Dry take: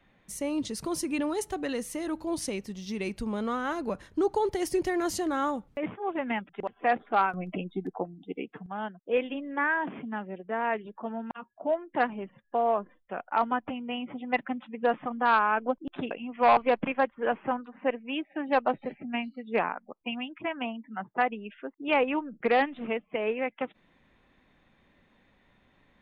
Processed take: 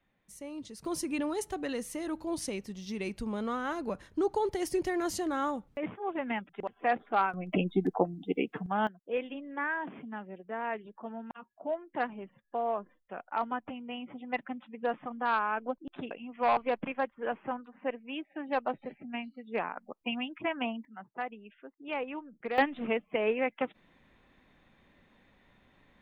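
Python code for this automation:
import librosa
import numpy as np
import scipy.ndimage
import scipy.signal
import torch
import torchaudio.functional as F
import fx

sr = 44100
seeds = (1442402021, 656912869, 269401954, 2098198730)

y = fx.gain(x, sr, db=fx.steps((0.0, -11.5), (0.85, -3.0), (7.53, 5.5), (8.87, -6.0), (19.77, 0.0), (20.85, -10.5), (22.58, 0.5)))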